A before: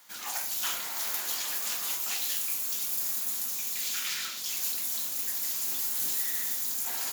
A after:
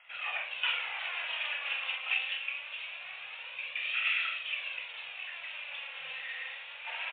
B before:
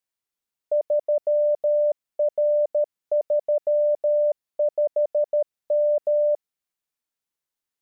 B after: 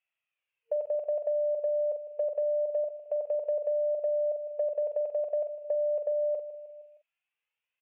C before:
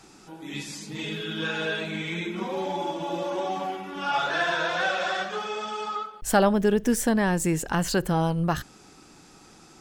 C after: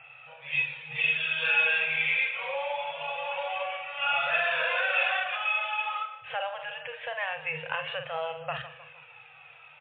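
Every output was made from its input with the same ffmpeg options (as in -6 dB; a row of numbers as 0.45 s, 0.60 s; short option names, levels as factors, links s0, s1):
-filter_complex "[0:a]aecho=1:1:155|310|465|620:0.119|0.0606|0.0309|0.0158,flanger=delay=1.5:depth=2.3:regen=44:speed=0.24:shape=sinusoidal,asplit=2[s0][s1];[s1]adelay=45,volume=0.355[s2];[s0][s2]amix=inputs=2:normalize=0,alimiter=limit=0.0891:level=0:latency=1:release=128,highpass=f=120:w=0.5412,highpass=f=120:w=1.3066,acompressor=threshold=0.0398:ratio=6,afftfilt=real='re*(1-between(b*sr/4096,160,460))':imag='im*(1-between(b*sr/4096,160,460))':win_size=4096:overlap=0.75,lowpass=f=2600:t=q:w=6.5,volume=1.19" -ar 8000 -c:a libmp3lame -b:a 40k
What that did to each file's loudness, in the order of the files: -5.5 LU, -7.5 LU, -1.0 LU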